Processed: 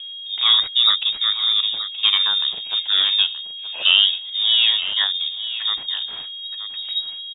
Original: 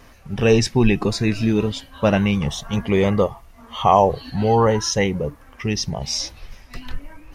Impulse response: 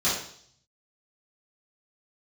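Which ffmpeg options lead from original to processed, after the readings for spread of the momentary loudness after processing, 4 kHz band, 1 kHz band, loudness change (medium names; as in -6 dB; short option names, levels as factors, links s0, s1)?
14 LU, +16.5 dB, -13.0 dB, +3.0 dB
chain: -filter_complex "[0:a]adynamicsmooth=sensitivity=3.5:basefreq=630,acrusher=bits=8:mix=0:aa=0.5,aeval=exprs='val(0)+0.0316*sin(2*PI*530*n/s)':c=same,asplit=2[s0][s1];[s1]aecho=0:1:925:0.251[s2];[s0][s2]amix=inputs=2:normalize=0,lowpass=f=3200:t=q:w=0.5098,lowpass=f=3200:t=q:w=0.6013,lowpass=f=3200:t=q:w=0.9,lowpass=f=3200:t=q:w=2.563,afreqshift=-3800,volume=0.891"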